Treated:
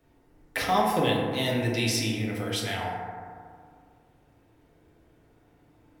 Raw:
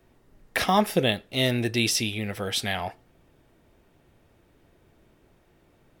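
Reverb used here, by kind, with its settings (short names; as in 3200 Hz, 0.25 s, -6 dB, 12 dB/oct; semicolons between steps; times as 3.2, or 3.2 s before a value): FDN reverb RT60 2.1 s, low-frequency decay 1×, high-frequency decay 0.3×, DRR -3.5 dB; gain -6 dB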